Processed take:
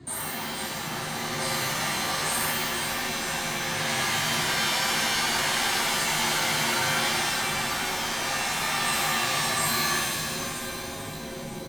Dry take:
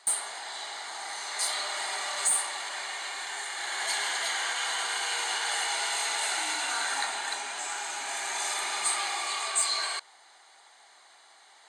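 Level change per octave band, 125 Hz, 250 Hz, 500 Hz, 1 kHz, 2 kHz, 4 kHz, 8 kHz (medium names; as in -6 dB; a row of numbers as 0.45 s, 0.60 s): no reading, +21.5 dB, +9.0 dB, +5.0 dB, +5.5 dB, +4.5 dB, +1.5 dB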